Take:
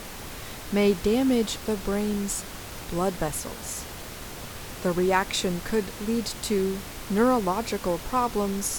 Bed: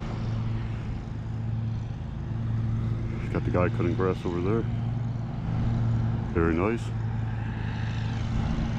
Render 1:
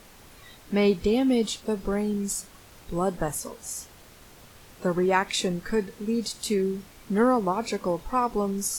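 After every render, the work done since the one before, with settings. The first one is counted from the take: noise print and reduce 12 dB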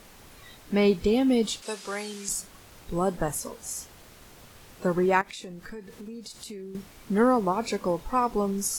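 1.62–2.29 weighting filter ITU-R 468; 5.21–6.75 compressor 4:1, threshold -39 dBFS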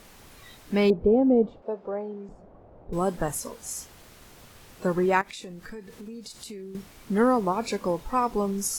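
0.9–2.93 synth low-pass 640 Hz, resonance Q 2.1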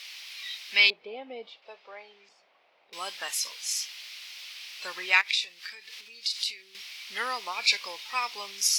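HPF 1400 Hz 12 dB/oct; band shelf 3400 Hz +15.5 dB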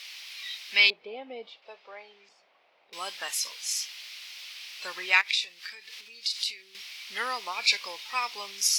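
nothing audible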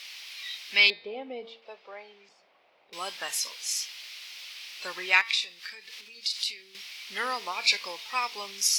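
low shelf 410 Hz +6.5 dB; de-hum 227.8 Hz, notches 23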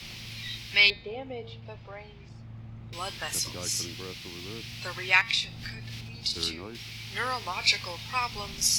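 add bed -16 dB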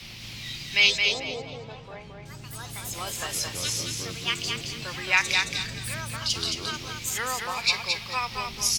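echoes that change speed 0.205 s, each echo +4 st, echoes 2, each echo -6 dB; feedback echo 0.22 s, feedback 26%, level -4.5 dB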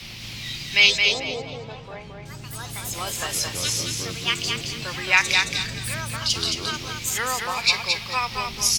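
gain +4 dB; limiter -2 dBFS, peak gain reduction 1 dB

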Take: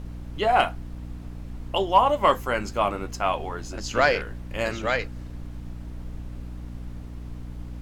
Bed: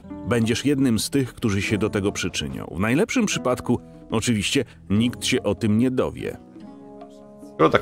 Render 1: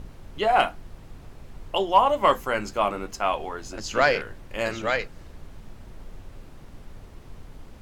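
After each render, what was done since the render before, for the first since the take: notches 60/120/180/240/300 Hz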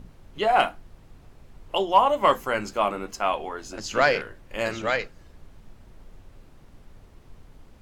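noise print and reduce 6 dB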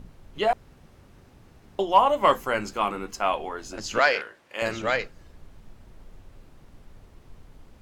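0.53–1.79 room tone; 2.75–3.16 bell 610 Hz -14 dB 0.2 oct; 3.99–4.62 weighting filter A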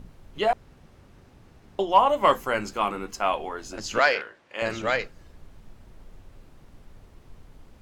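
0.51–2.09 high shelf 10000 Hz -5.5 dB; 4.14–4.7 air absorption 57 m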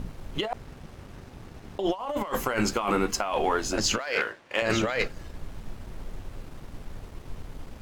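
negative-ratio compressor -31 dBFS, ratio -1; sample leveller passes 1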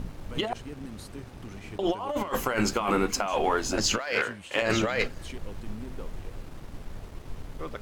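add bed -22 dB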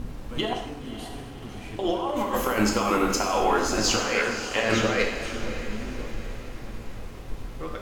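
diffused feedback echo 0.568 s, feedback 49%, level -11.5 dB; non-linear reverb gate 0.3 s falling, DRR 0.5 dB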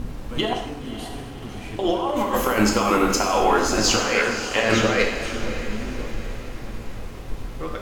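gain +4 dB

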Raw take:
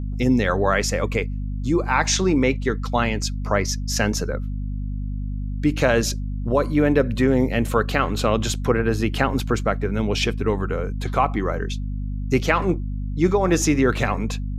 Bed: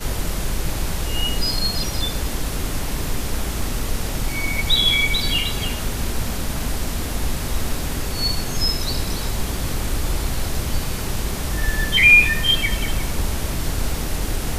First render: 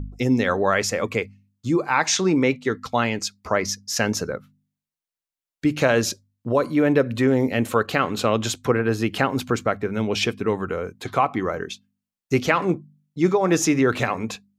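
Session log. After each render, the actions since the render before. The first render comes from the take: de-hum 50 Hz, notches 5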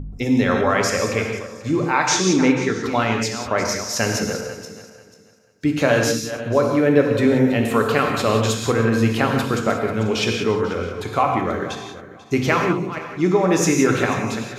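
regenerating reverse delay 0.245 s, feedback 47%, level -11.5 dB; non-linear reverb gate 0.21 s flat, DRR 2 dB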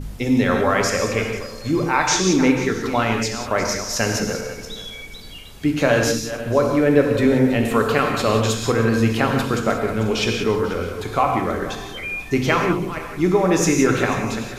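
add bed -18 dB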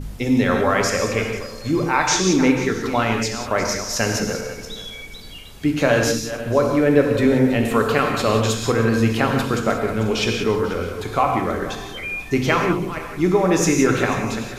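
nothing audible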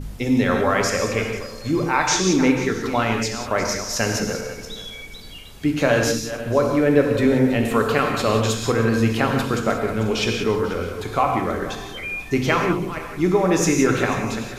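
gain -1 dB

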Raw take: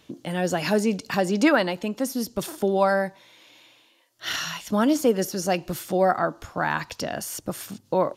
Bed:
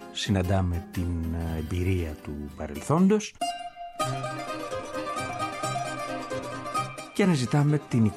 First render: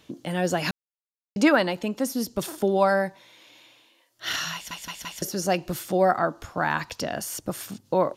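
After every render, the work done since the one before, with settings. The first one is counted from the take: 0.71–1.36 mute; 4.54 stutter in place 0.17 s, 4 plays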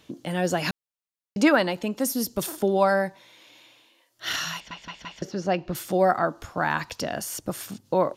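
1.99–2.56 high shelf 7100 Hz -> 12000 Hz +9.5 dB; 4.6–5.75 air absorption 190 m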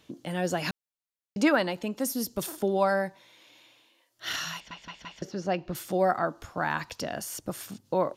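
gain -4 dB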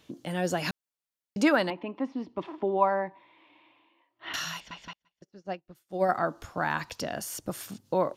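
1.7–4.34 speaker cabinet 120–2600 Hz, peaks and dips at 140 Hz -9 dB, 210 Hz -6 dB, 310 Hz +6 dB, 490 Hz -7 dB, 1000 Hz +8 dB, 1500 Hz -9 dB; 4.93–6.09 upward expander 2.5:1, over -46 dBFS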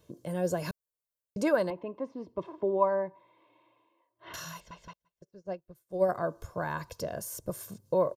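bell 2700 Hz -13.5 dB 2.5 oct; comb 1.9 ms, depth 61%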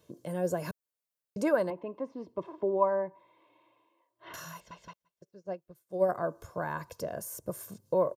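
HPF 130 Hz 6 dB/oct; dynamic EQ 4000 Hz, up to -7 dB, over -54 dBFS, Q 0.92

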